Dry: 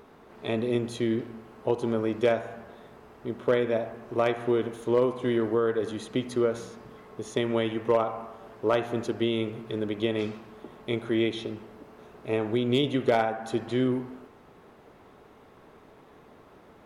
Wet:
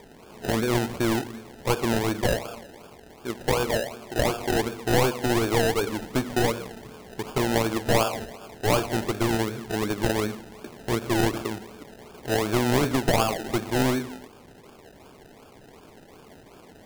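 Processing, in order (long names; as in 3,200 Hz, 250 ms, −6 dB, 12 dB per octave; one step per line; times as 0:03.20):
wavefolder on the positive side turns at −24.5 dBFS
0:02.21–0:04.56: low-shelf EQ 230 Hz −7.5 dB
sample-and-hold swept by an LFO 31×, swing 60% 2.7 Hz
level +4 dB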